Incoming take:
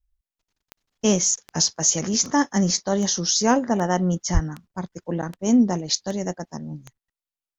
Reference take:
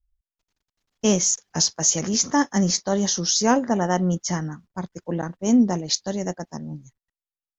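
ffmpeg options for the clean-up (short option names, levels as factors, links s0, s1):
-filter_complex "[0:a]adeclick=t=4,asplit=3[s0][s1][s2];[s0]afade=t=out:st=4.33:d=0.02[s3];[s1]highpass=f=140:w=0.5412,highpass=f=140:w=1.3066,afade=t=in:st=4.33:d=0.02,afade=t=out:st=4.45:d=0.02[s4];[s2]afade=t=in:st=4.45:d=0.02[s5];[s3][s4][s5]amix=inputs=3:normalize=0"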